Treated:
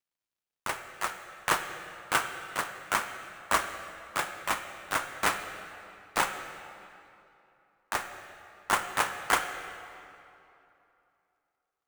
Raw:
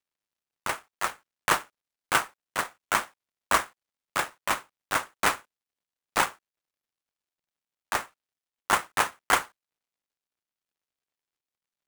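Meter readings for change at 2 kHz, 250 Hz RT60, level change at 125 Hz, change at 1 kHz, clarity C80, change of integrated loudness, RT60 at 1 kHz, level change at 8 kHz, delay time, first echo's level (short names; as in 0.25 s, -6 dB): -2.0 dB, 2.9 s, -2.0 dB, -2.5 dB, 8.5 dB, -3.0 dB, 2.9 s, -2.5 dB, none, none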